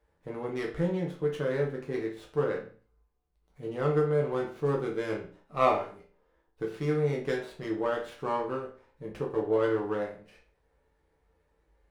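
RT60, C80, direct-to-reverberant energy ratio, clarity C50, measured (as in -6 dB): 0.40 s, 13.0 dB, -2.0 dB, 8.0 dB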